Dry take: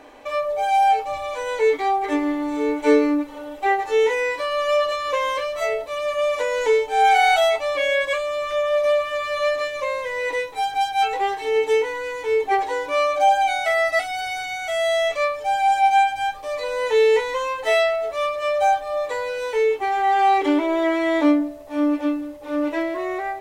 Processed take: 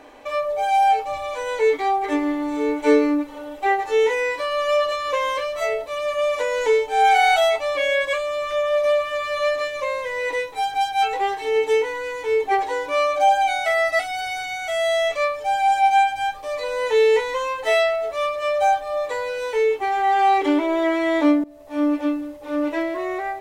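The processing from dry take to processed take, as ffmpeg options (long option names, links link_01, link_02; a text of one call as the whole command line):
ffmpeg -i in.wav -filter_complex "[0:a]asplit=2[link_01][link_02];[link_01]atrim=end=21.44,asetpts=PTS-STARTPTS,afade=type=out:start_time=21.436:duration=0.004:curve=hsin:silence=0.0944061[link_03];[link_02]atrim=start=21.44,asetpts=PTS-STARTPTS,afade=type=in:duration=0.45:curve=qsin:silence=0.0944061[link_04];[link_03][link_04]concat=n=2:v=0:a=1" out.wav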